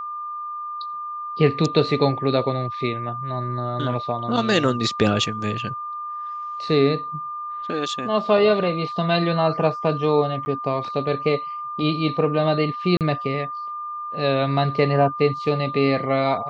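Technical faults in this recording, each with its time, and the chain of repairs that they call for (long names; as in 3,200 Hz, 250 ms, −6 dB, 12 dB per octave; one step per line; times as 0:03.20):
whistle 1,200 Hz −28 dBFS
0:10.45–0:10.46: drop-out 10 ms
0:12.97–0:13.01: drop-out 38 ms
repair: notch filter 1,200 Hz, Q 30
repair the gap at 0:10.45, 10 ms
repair the gap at 0:12.97, 38 ms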